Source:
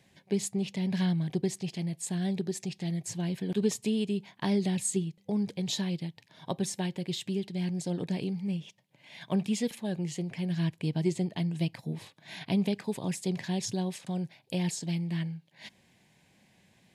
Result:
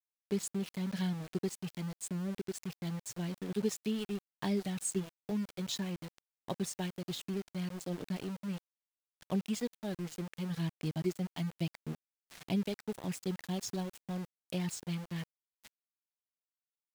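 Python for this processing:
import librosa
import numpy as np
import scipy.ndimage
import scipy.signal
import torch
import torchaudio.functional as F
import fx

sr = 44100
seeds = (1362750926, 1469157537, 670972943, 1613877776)

y = fx.dereverb_blind(x, sr, rt60_s=0.94)
y = fx.spec_erase(y, sr, start_s=2.07, length_s=0.29, low_hz=650.0, high_hz=6400.0)
y = np.where(np.abs(y) >= 10.0 ** (-38.0 / 20.0), y, 0.0)
y = y * librosa.db_to_amplitude(-4.5)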